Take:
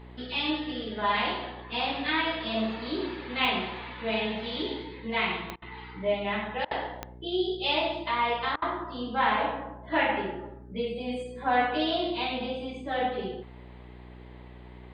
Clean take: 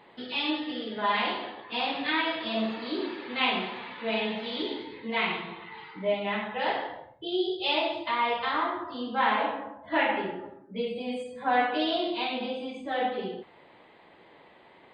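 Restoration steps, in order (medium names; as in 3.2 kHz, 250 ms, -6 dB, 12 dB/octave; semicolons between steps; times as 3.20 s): de-click; de-hum 61.2 Hz, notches 7; interpolate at 5.56/6.65/8.56 s, 59 ms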